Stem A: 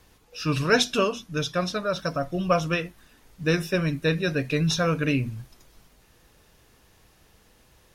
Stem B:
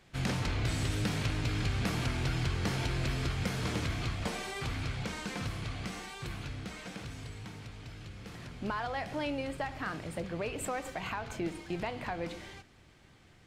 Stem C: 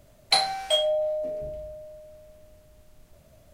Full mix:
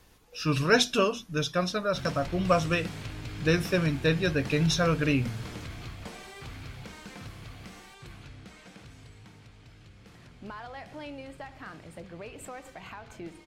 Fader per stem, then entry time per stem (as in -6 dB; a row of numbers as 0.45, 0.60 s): -1.5 dB, -6.5 dB, off; 0.00 s, 1.80 s, off